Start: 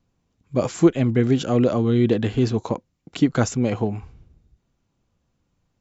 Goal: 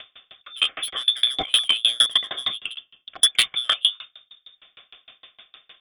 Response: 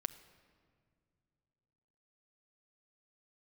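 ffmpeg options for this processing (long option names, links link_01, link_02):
-filter_complex "[0:a]highpass=frequency=270:poles=1,lowpass=frequency=3100:width_type=q:width=0.5098,lowpass=frequency=3100:width_type=q:width=0.6013,lowpass=frequency=3100:width_type=q:width=0.9,lowpass=frequency=3100:width_type=q:width=2.563,afreqshift=-3700,acompressor=mode=upward:threshold=-36dB:ratio=2.5,asplit=2[link_01][link_02];[1:a]atrim=start_sample=2205,lowpass=2300[link_03];[link_02][link_03]afir=irnorm=-1:irlink=0,volume=-4.5dB[link_04];[link_01][link_04]amix=inputs=2:normalize=0,aeval=exprs='0.473*sin(PI/2*3.16*val(0)/0.473)':channel_layout=same,asuperstop=centerf=910:order=8:qfactor=4.1,aeval=exprs='val(0)*pow(10,-33*if(lt(mod(6.5*n/s,1),2*abs(6.5)/1000),1-mod(6.5*n/s,1)/(2*abs(6.5)/1000),(mod(6.5*n/s,1)-2*abs(6.5)/1000)/(1-2*abs(6.5)/1000))/20)':channel_layout=same"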